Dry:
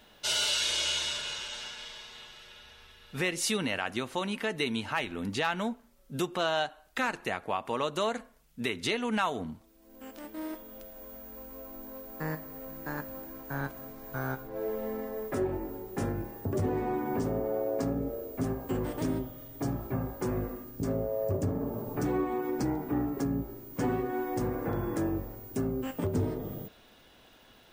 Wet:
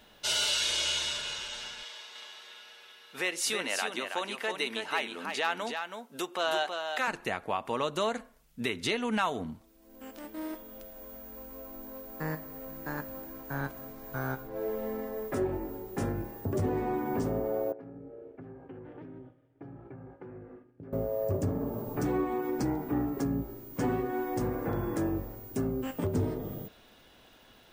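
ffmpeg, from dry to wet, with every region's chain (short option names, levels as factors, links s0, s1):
-filter_complex "[0:a]asettb=1/sr,asplit=3[s0][s1][s2];[s0]atrim=end=1.834[s3];[s1]atrim=start=1.83:end=7.08,asetpts=PTS-STARTPTS,afade=t=in:d=0.004:c=qsin,afade=t=out:st=5.246:d=0.004:c=qsin,highpass=430,aecho=1:1:324:0.501,atrim=end_sample=231525[s4];[s2]atrim=start=7.076[s5];[s3][s4]acrossfade=d=0.004:c1=hsin:c2=qsin[s6];[s6][s5]acrossfade=d=0.004:c1=qsin:c2=hsin,asettb=1/sr,asplit=3[s7][s8][s9];[s7]atrim=end=17.724[s10];[s8]atrim=start=17.72:end=20.93,asetpts=PTS-STARTPTS,afade=t=in:d=0.004:c=qsin,afade=t=out:st=3.206:d=0.004:c=qsin,agate=range=0.0224:threshold=0.0141:ratio=3:release=100:detection=peak,acompressor=threshold=0.0112:ratio=12:attack=3.2:release=140:knee=1:detection=peak,highpass=110,equalizer=f=220:t=q:w=4:g=-8,equalizer=f=630:t=q:w=4:g=-7,equalizer=f=1100:t=q:w=4:g=-9,equalizer=f=2000:t=q:w=4:g=-4,lowpass=f=2300:w=0.5412,lowpass=f=2300:w=1.3066[s11];[s9]atrim=start=20.926[s12];[s10][s11]acrossfade=d=0.004:c1=hsin:c2=qsin[s13];[s13][s12]acrossfade=d=0.004:c1=qsin:c2=hsin"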